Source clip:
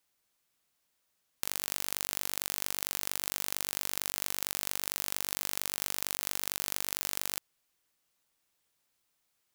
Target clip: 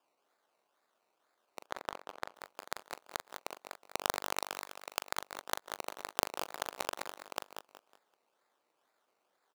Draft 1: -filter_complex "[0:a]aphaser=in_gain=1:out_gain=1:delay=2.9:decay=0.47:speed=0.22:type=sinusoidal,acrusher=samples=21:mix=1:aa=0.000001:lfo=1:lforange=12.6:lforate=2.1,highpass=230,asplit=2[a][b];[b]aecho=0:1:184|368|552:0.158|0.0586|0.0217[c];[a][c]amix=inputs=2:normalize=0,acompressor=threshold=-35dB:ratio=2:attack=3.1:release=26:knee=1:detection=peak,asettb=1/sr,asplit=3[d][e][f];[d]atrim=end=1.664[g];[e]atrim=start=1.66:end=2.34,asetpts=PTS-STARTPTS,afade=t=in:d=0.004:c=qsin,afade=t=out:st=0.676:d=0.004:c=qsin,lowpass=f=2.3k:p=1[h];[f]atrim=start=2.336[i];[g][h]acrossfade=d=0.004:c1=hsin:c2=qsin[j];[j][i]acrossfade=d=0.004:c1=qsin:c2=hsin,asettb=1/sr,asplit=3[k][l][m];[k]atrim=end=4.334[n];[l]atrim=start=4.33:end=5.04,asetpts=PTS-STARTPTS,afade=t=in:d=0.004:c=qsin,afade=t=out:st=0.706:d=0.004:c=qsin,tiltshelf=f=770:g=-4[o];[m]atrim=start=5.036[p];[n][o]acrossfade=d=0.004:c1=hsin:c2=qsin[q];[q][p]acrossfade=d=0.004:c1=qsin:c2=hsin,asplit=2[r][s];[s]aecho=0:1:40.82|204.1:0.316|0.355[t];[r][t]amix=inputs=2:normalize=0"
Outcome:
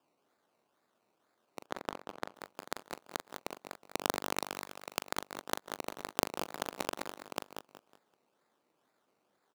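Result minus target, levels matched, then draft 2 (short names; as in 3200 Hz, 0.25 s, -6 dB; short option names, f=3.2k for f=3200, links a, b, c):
250 Hz band +8.0 dB
-filter_complex "[0:a]aphaser=in_gain=1:out_gain=1:delay=2.9:decay=0.47:speed=0.22:type=sinusoidal,acrusher=samples=21:mix=1:aa=0.000001:lfo=1:lforange=12.6:lforate=2.1,highpass=500,asplit=2[a][b];[b]aecho=0:1:184|368|552:0.158|0.0586|0.0217[c];[a][c]amix=inputs=2:normalize=0,acompressor=threshold=-35dB:ratio=2:attack=3.1:release=26:knee=1:detection=peak,asettb=1/sr,asplit=3[d][e][f];[d]atrim=end=1.664[g];[e]atrim=start=1.66:end=2.34,asetpts=PTS-STARTPTS,afade=t=in:d=0.004:c=qsin,afade=t=out:st=0.676:d=0.004:c=qsin,lowpass=f=2.3k:p=1[h];[f]atrim=start=2.336[i];[g][h]acrossfade=d=0.004:c1=hsin:c2=qsin[j];[j][i]acrossfade=d=0.004:c1=qsin:c2=hsin,asettb=1/sr,asplit=3[k][l][m];[k]atrim=end=4.334[n];[l]atrim=start=4.33:end=5.04,asetpts=PTS-STARTPTS,afade=t=in:d=0.004:c=qsin,afade=t=out:st=0.706:d=0.004:c=qsin,tiltshelf=f=770:g=-4[o];[m]atrim=start=5.036[p];[n][o]acrossfade=d=0.004:c1=hsin:c2=qsin[q];[q][p]acrossfade=d=0.004:c1=qsin:c2=hsin,asplit=2[r][s];[s]aecho=0:1:40.82|204.1:0.316|0.355[t];[r][t]amix=inputs=2:normalize=0"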